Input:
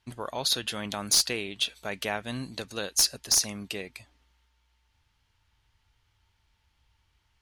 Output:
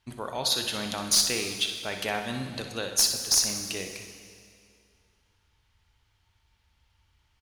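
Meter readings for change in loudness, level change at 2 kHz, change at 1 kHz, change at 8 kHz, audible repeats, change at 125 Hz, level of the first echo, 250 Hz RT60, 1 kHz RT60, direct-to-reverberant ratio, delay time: +1.5 dB, +1.5 dB, +2.0 dB, +1.5 dB, 1, +1.0 dB, −10.5 dB, 2.3 s, 2.2 s, 4.5 dB, 62 ms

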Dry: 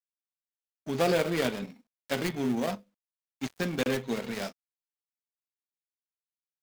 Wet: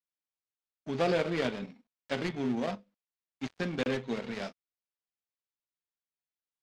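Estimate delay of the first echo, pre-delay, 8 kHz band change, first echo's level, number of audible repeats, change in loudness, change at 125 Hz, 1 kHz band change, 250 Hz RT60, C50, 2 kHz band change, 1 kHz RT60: no echo audible, no reverb audible, −10.5 dB, no echo audible, no echo audible, −2.5 dB, −2.5 dB, −2.5 dB, no reverb audible, no reverb audible, −2.5 dB, no reverb audible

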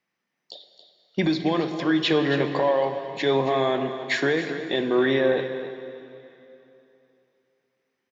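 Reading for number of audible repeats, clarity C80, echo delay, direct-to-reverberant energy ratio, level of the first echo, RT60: 1, 7.5 dB, 274 ms, 6.5 dB, −11.5 dB, 3.0 s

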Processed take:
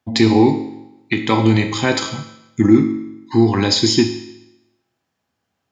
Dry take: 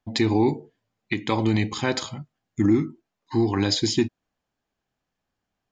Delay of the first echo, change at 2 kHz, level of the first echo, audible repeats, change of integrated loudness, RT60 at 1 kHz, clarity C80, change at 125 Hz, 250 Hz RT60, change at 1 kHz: no echo audible, +8.0 dB, no echo audible, no echo audible, +7.5 dB, 0.95 s, 11.0 dB, +7.0 dB, 0.90 s, +8.0 dB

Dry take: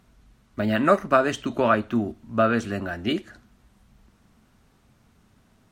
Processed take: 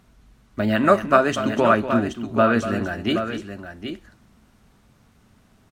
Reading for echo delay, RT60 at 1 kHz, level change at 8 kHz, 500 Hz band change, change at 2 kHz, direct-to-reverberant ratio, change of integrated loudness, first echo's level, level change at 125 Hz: 242 ms, no reverb audible, +3.5 dB, +3.5 dB, +3.5 dB, no reverb audible, +3.0 dB, −11.5 dB, +3.0 dB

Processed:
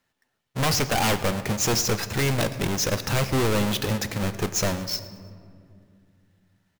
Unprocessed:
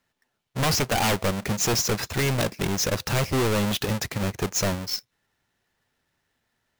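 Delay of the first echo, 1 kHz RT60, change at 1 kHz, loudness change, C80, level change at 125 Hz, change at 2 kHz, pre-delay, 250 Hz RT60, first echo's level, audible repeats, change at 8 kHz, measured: 111 ms, 2.1 s, +0.5 dB, +0.5 dB, 13.5 dB, +0.5 dB, +0.5 dB, 4 ms, 3.5 s, −20.5 dB, 2, 0.0 dB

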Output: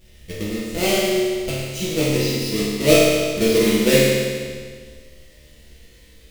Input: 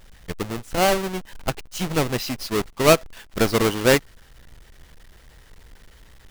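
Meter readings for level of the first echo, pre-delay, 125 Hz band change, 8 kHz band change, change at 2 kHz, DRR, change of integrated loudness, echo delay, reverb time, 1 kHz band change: no echo audible, 6 ms, +3.5 dB, +4.5 dB, +2.0 dB, −9.0 dB, +3.5 dB, no echo audible, 1.8 s, −6.5 dB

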